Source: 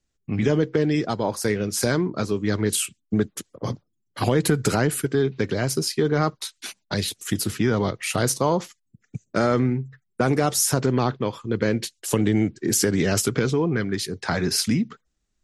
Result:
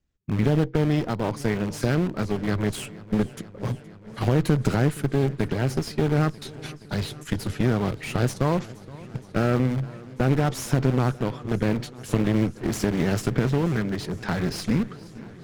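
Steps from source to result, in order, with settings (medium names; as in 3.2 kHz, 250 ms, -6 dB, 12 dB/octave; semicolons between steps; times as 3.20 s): in parallel at -6.5 dB: integer overflow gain 22.5 dB; on the sum: treble shelf 7.4 kHz -6 dB; Chebyshev shaper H 4 -13 dB, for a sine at -7 dBFS; tone controls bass +6 dB, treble -6 dB; modulated delay 471 ms, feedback 79%, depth 63 cents, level -20.5 dB; trim -5.5 dB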